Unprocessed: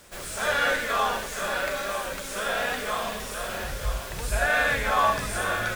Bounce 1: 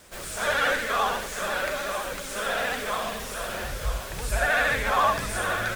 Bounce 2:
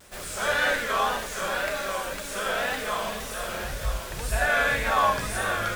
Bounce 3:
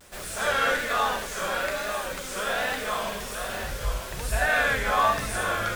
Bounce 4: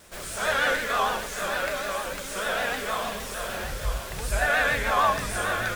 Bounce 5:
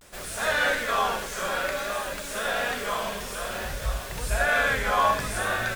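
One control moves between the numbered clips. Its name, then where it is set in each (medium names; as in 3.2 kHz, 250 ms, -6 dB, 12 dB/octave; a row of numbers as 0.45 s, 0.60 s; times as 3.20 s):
vibrato, rate: 14 Hz, 1.9 Hz, 1.2 Hz, 6.6 Hz, 0.57 Hz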